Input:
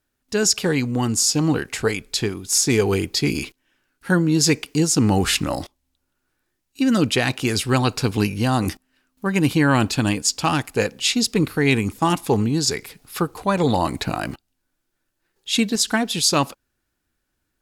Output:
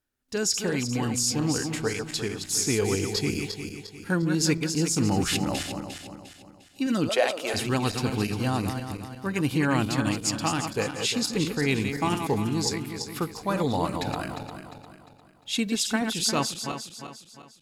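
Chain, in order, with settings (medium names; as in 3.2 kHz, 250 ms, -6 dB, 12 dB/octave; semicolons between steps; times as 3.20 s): backward echo that repeats 176 ms, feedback 63%, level -6.5 dB; 7.09–7.54 s: resonant high-pass 580 Hz, resonance Q 4.9; 13.18–13.75 s: crackle 210 per s -43 dBFS; trim -7.5 dB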